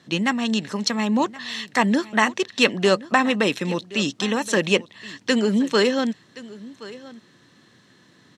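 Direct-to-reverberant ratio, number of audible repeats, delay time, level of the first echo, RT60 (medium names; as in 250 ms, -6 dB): no reverb, 1, 1073 ms, -19.0 dB, no reverb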